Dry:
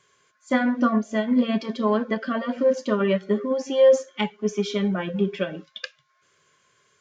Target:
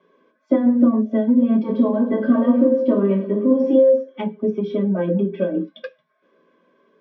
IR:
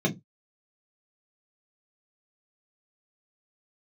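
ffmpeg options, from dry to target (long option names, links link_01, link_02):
-filter_complex "[0:a]acompressor=threshold=-28dB:ratio=6,highpass=170,lowpass=2100,asettb=1/sr,asplit=3[link_01][link_02][link_03];[link_01]atrim=end=1.634[link_04];[link_02]atrim=start=1.63:end=3.75,asetpts=PTS-STARTPTS,afade=type=in:duration=0.004:curve=qsin,afade=type=out:start_time=2.116:duration=0.004:curve=qsin,aecho=1:1:20|52|103.2|185.1|316.2:0.631|0.398|0.251|0.158|0.1,atrim=end_sample=93492[link_05];[link_03]atrim=start=3.746[link_06];[link_04][link_05]acrossfade=duration=0.004:curve1=hsin:curve2=qsin[link_07];[link_07][link_06]acrossfade=duration=0.004:curve1=qsin:curve2=hsin[link_08];[1:a]atrim=start_sample=2205,asetrate=66150,aresample=44100[link_09];[link_08][link_09]afir=irnorm=-1:irlink=0,volume=-4dB"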